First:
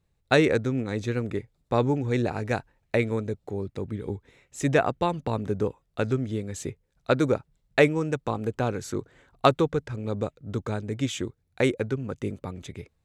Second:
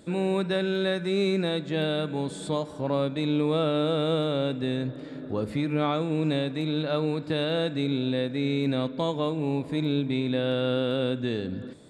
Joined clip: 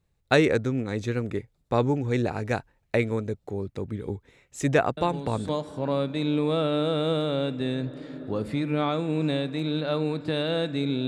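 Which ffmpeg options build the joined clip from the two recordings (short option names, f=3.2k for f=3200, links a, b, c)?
-filter_complex "[1:a]asplit=2[a][b];[0:a]apad=whole_dur=11.07,atrim=end=11.07,atrim=end=5.492[c];[b]atrim=start=2.508:end=8.09[d];[a]atrim=start=1.99:end=2.51,asetpts=PTS-STARTPTS,volume=-7dB,afade=t=in:d=0.004:c=hsin,afade=t=out:st=0.516:d=0.004:c=hsin,adelay=219177S[e];[c][d]acrossfade=d=0.004:c1=hsin:c2=hsin[f];[f][e]amix=inputs=2:normalize=0"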